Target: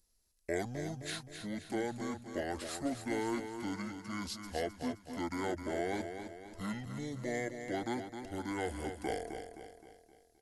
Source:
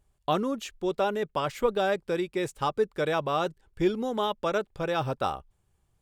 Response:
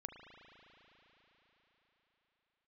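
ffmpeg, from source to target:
-filter_complex "[0:a]acrossover=split=500[a][b];[a]asoftclip=type=tanh:threshold=-32.5dB[c];[c][b]amix=inputs=2:normalize=0,aemphasis=mode=production:type=50fm,asetrate=25442,aresample=44100,highshelf=f=11k:g=8.5,aecho=1:1:261|522|783|1044|1305:0.398|0.187|0.0879|0.0413|0.0194,volume=-9dB"

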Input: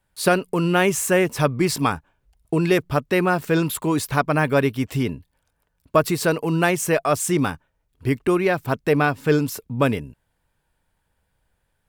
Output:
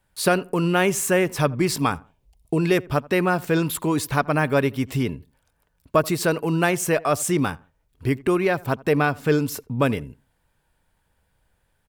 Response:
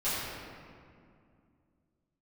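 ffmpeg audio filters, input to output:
-filter_complex "[0:a]asettb=1/sr,asplit=3[a][b][c];[a]atrim=end=1.944[d];[b]atrim=start=1.94:end=2.58,asetpts=PTS-STARTPTS,afade=t=in:d=0.004:c=qsin,afade=t=out:st=0.636:d=0.004:c=qsin,equalizer=f=1.5k:t=o:w=0.59:g=-14.5[e];[c]atrim=start=2.576[f];[d][e]acrossfade=d=0.004:c1=hsin:c2=qsin[g];[g][f]acrossfade=d=0.004:c1=qsin:c2=hsin,asplit=2[h][i];[i]acompressor=threshold=-31dB:ratio=6,volume=-2dB[j];[h][j]amix=inputs=2:normalize=0,asplit=2[k][l];[l]adelay=83,lowpass=f=1.5k:p=1,volume=-22dB,asplit=2[m][n];[n]adelay=83,lowpass=f=1.5k:p=1,volume=0.29[o];[k][m][o]amix=inputs=3:normalize=0,volume=-2.5dB"

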